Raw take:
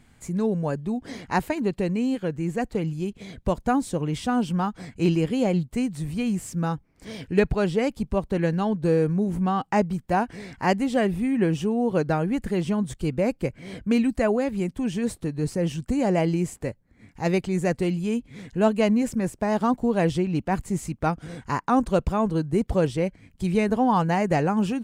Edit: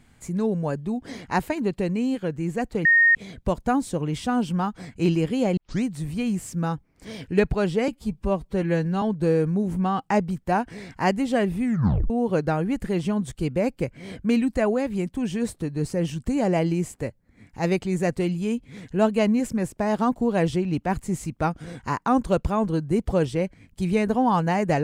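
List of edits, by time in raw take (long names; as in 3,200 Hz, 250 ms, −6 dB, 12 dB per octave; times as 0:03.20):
0:02.85–0:03.15: beep over 1,850 Hz −13 dBFS
0:05.57: tape start 0.26 s
0:07.88–0:08.64: time-stretch 1.5×
0:11.26: tape stop 0.46 s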